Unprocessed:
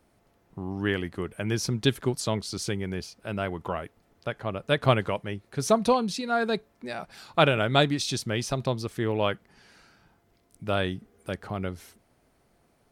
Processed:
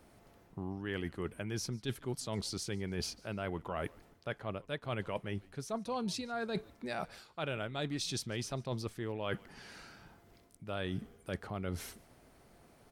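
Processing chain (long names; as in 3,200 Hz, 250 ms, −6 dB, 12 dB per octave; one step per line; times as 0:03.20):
reversed playback
downward compressor 16 to 1, threshold −38 dBFS, peak gain reduction 24 dB
reversed playback
echo with shifted repeats 146 ms, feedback 34%, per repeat −120 Hz, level −24 dB
level +4 dB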